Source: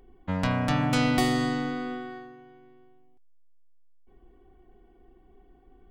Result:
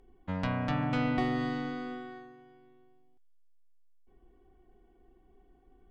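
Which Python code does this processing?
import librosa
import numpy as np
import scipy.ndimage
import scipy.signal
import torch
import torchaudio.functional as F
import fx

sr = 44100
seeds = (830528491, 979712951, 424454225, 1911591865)

p1 = fx.env_lowpass_down(x, sr, base_hz=2400.0, full_db=-20.0)
p2 = p1 + fx.echo_wet_highpass(p1, sr, ms=392, feedback_pct=32, hz=3900.0, wet_db=-24, dry=0)
y = p2 * librosa.db_to_amplitude(-5.5)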